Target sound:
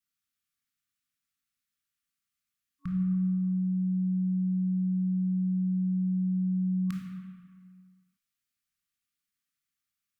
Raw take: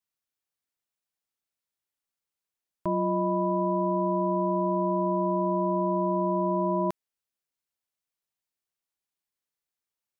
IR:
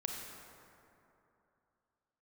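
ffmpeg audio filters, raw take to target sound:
-filter_complex "[1:a]atrim=start_sample=2205,asetrate=74970,aresample=44100[link_01];[0:a][link_01]afir=irnorm=-1:irlink=0,afftfilt=real='re*(1-between(b*sr/4096,290,1100))':imag='im*(1-between(b*sr/4096,290,1100))':win_size=4096:overlap=0.75,volume=7dB"

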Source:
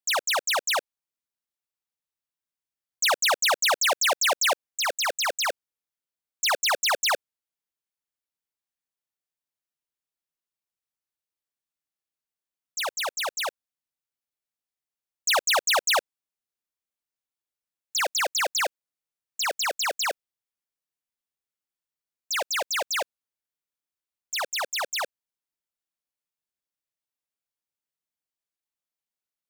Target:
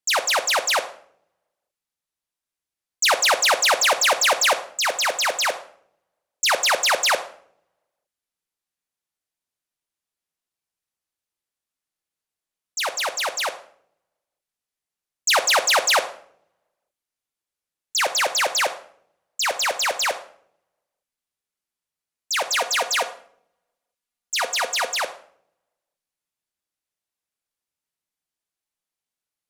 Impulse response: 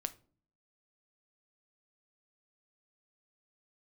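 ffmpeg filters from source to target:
-filter_complex "[0:a]asettb=1/sr,asplit=3[link_01][link_02][link_03];[link_01]atrim=end=22.444[link_04];[link_02]atrim=start=22.44:end=24.88,asetpts=PTS-STARTPTS,afade=type=in:duration=0.004:curve=qsin,afade=type=out:start_time=2.436:duration=0.004:curve=qsin,aecho=1:1:4.2:0.57,atrim=end_sample=107604[link_05];[link_03]atrim=start=24.876[link_06];[link_04][link_05]acrossfade=duration=0.004:curve1=hsin:curve2=qsin[link_07];[link_07][link_06]acrossfade=duration=0.004:curve1=qsin:curve2=hsin[link_08];[1:a]atrim=start_sample=2205,asetrate=24255,aresample=44100[link_09];[link_08][link_09]afir=irnorm=-1:irlink=0,volume=2dB"

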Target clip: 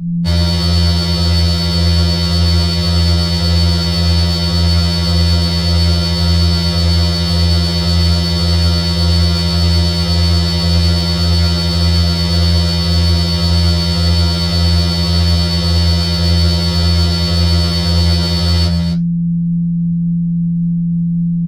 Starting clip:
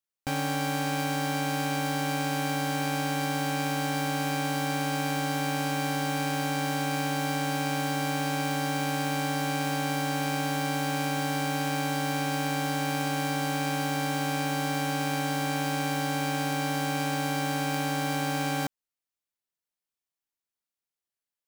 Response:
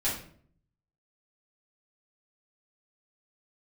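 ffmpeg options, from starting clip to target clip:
-filter_complex "[0:a]lowpass=frequency=4600:width_type=q:width=4.8,lowshelf=frequency=110:gain=7.5,aeval=exprs='val(0)+0.01*(sin(2*PI*60*n/s)+sin(2*PI*2*60*n/s)/2+sin(2*PI*3*60*n/s)/3+sin(2*PI*4*60*n/s)/4+sin(2*PI*5*60*n/s)/5)':channel_layout=same,apsyclip=17.5dB,flanger=delay=9.9:depth=6.1:regen=-60:speed=1.8:shape=sinusoidal,asoftclip=type=tanh:threshold=-12dB,acontrast=81,lowshelf=frequency=380:gain=7.5,afreqshift=-230,asplit=2[link_01][link_02];[link_02]aecho=0:1:129|260:0.266|0.398[link_03];[link_01][link_03]amix=inputs=2:normalize=0,afftfilt=real='re*2*eq(mod(b,4),0)':imag='im*2*eq(mod(b,4),0)':win_size=2048:overlap=0.75,volume=-6.5dB"

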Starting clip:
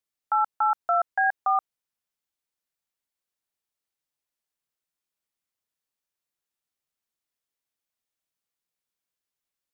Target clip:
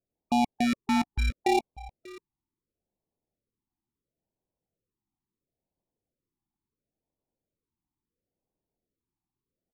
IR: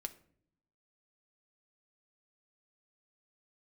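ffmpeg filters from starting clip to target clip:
-filter_complex "[0:a]acrusher=samples=28:mix=1:aa=0.000001,adynamicsmooth=sensitivity=1.5:basefreq=990,asplit=2[link_01][link_02];[link_02]aecho=0:1:590:0.112[link_03];[link_01][link_03]amix=inputs=2:normalize=0,afftfilt=real='re*(1-between(b*sr/1024,510*pow(1700/510,0.5+0.5*sin(2*PI*0.73*pts/sr))/1.41,510*pow(1700/510,0.5+0.5*sin(2*PI*0.73*pts/sr))*1.41))':imag='im*(1-between(b*sr/1024,510*pow(1700/510,0.5+0.5*sin(2*PI*0.73*pts/sr))/1.41,510*pow(1700/510,0.5+0.5*sin(2*PI*0.73*pts/sr))*1.41))':win_size=1024:overlap=0.75"

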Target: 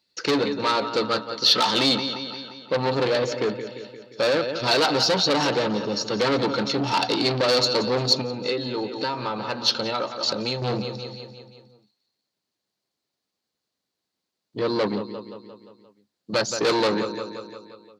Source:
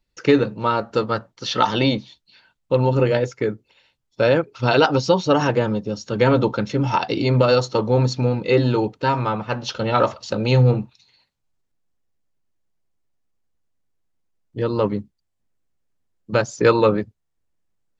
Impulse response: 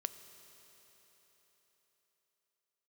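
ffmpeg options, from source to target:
-filter_complex "[0:a]aecho=1:1:175|350|525|700|875|1050:0.2|0.114|0.0648|0.037|0.0211|0.012,asettb=1/sr,asplit=3[link_01][link_02][link_03];[link_01]atrim=end=8.214[link_04];[link_02]atrim=start=8.21:end=10.62,asetpts=PTS-STARTPTS,afade=type=in:duration=0.004:curve=qsin,afade=type=out:start_time=2.406:duration=0.004:curve=qsin,acompressor=threshold=-24dB:ratio=10[link_05];[link_03]atrim=start=10.616[link_06];[link_04][link_05]acrossfade=duration=0.004:curve1=hsin:curve2=qsin[link_07];[link_07][link_06]acrossfade=duration=0.004:curve1=qsin:curve2=hsin,asoftclip=type=tanh:threshold=-20.5dB,highpass=200,equalizer=frequency=4300:width=2.3:gain=13,volume=2.5dB"

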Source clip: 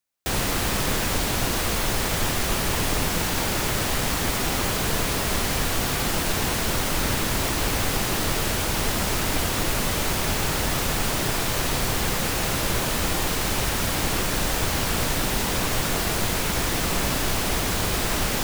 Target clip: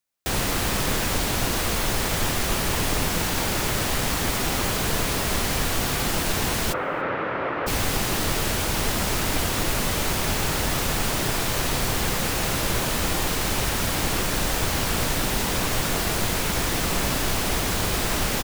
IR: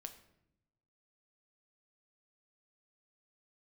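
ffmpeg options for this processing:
-filter_complex "[0:a]asplit=3[link_01][link_02][link_03];[link_01]afade=type=out:start_time=6.72:duration=0.02[link_04];[link_02]highpass=210,equalizer=frequency=220:width_type=q:width=4:gain=-8,equalizer=frequency=530:width_type=q:width=4:gain=7,equalizer=frequency=1300:width_type=q:width=4:gain=6,lowpass=frequency=2200:width=0.5412,lowpass=frequency=2200:width=1.3066,afade=type=in:start_time=6.72:duration=0.02,afade=type=out:start_time=7.66:duration=0.02[link_05];[link_03]afade=type=in:start_time=7.66:duration=0.02[link_06];[link_04][link_05][link_06]amix=inputs=3:normalize=0,asplit=2[link_07][link_08];[link_08]adelay=285.7,volume=-27dB,highshelf=frequency=4000:gain=-6.43[link_09];[link_07][link_09]amix=inputs=2:normalize=0"

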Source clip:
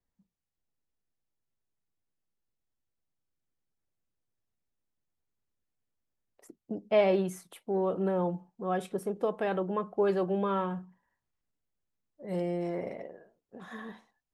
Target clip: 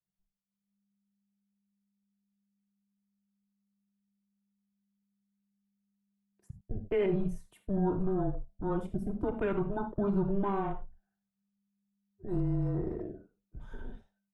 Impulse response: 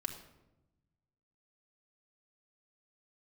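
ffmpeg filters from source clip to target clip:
-filter_complex "[0:a]afwtdn=0.0112,asplit=2[link_01][link_02];[link_02]acompressor=threshold=-41dB:ratio=6,volume=-0.5dB[link_03];[link_01][link_03]amix=inputs=2:normalize=0[link_04];[1:a]atrim=start_sample=2205,atrim=end_sample=4410[link_05];[link_04][link_05]afir=irnorm=-1:irlink=0,alimiter=limit=-21dB:level=0:latency=1:release=56,afreqshift=-200"

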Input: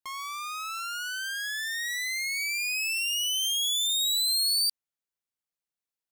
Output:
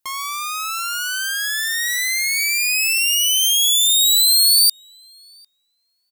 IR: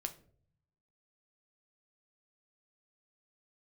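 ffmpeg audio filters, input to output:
-filter_complex "[0:a]highshelf=frequency=7200:gain=9,asplit=2[link_01][link_02];[link_02]adelay=750,lowpass=frequency=1200:poles=1,volume=-19.5dB,asplit=2[link_03][link_04];[link_04]adelay=750,lowpass=frequency=1200:poles=1,volume=0.24[link_05];[link_03][link_05]amix=inputs=2:normalize=0[link_06];[link_01][link_06]amix=inputs=2:normalize=0,volume=8.5dB"

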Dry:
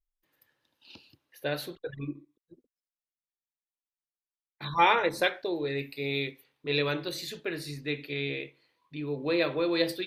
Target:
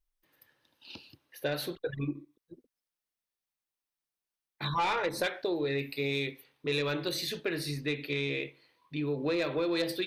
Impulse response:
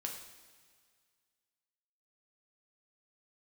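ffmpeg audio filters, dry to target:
-af "bandreject=frequency=7100:width=9,asoftclip=type=tanh:threshold=-19.5dB,acompressor=threshold=-32dB:ratio=4,volume=4dB"

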